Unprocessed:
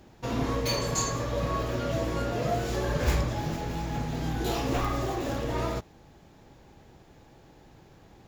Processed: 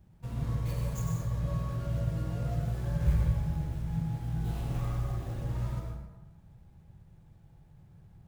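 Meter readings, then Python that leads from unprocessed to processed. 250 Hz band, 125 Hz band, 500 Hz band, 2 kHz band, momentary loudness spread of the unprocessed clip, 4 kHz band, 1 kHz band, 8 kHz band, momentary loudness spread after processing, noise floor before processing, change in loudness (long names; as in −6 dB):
−6.0 dB, +2.0 dB, −14.0 dB, −14.5 dB, 5 LU, below −15 dB, −14.0 dB, below −15 dB, 7 LU, −55 dBFS, −3.5 dB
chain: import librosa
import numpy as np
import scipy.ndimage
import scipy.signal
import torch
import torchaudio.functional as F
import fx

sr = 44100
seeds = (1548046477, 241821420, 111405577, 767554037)

y = scipy.ndimage.median_filter(x, 9, mode='constant')
y = fx.curve_eq(y, sr, hz=(170.0, 280.0, 2600.0, 16000.0), db=(0, -18, -14, -4))
y = fx.rev_plate(y, sr, seeds[0], rt60_s=1.1, hf_ratio=0.6, predelay_ms=85, drr_db=0.5)
y = y * 10.0 ** (-1.0 / 20.0)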